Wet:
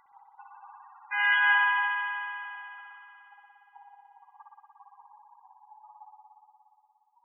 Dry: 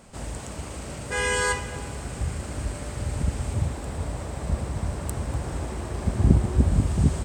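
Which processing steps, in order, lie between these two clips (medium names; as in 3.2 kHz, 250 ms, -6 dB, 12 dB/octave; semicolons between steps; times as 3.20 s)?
spectral gate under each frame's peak -15 dB strong; brick-wall FIR band-pass 770–3600 Hz; band-stop 1.3 kHz, Q 14; spring tank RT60 3.1 s, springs 58 ms, chirp 40 ms, DRR -3 dB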